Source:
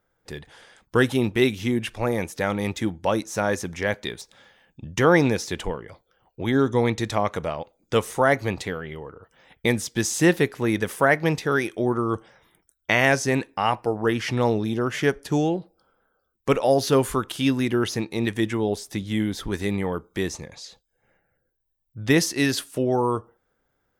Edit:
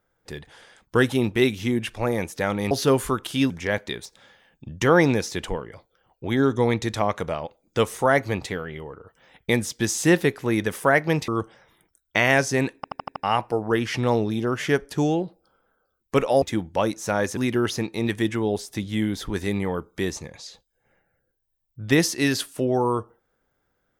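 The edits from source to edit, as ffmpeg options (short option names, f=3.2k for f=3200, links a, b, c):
-filter_complex "[0:a]asplit=11[a][b][c][d][e][f][g][h][i][j][k];[a]atrim=end=2.712[l];[b]atrim=start=16.758:end=17.552[m];[c]atrim=start=3.658:end=11.442[n];[d]atrim=start=12.018:end=13.582[o];[e]atrim=start=13.498:end=13.582[p];[f]atrim=start=13.498:end=13.582[q];[g]atrim=start=13.498:end=13.582[r];[h]atrim=start=13.498:end=13.582[s];[i]atrim=start=13.498:end=16.762[t];[j]atrim=start=2.708:end=3.662[u];[k]atrim=start=17.548[v];[l][m]acrossfade=d=0.004:c1=hsin:c2=hsin[w];[w][n]acrossfade=d=0.004:c1=hsin:c2=hsin[x];[x][o]acrossfade=d=0.004:c1=hsin:c2=hsin[y];[y][p]acrossfade=d=0.004:c1=hsin:c2=hsin[z];[z][q]acrossfade=d=0.004:c1=hsin:c2=hsin[aa];[aa][r]acrossfade=d=0.004:c1=hsin:c2=hsin[ab];[ab][s]acrossfade=d=0.004:c1=hsin:c2=hsin[ac];[ac][t]acrossfade=d=0.004:c1=hsin:c2=hsin[ad];[ad][u]acrossfade=d=0.004:c1=hsin:c2=hsin[ae];[ae][v]acrossfade=d=0.004:c1=hsin:c2=hsin"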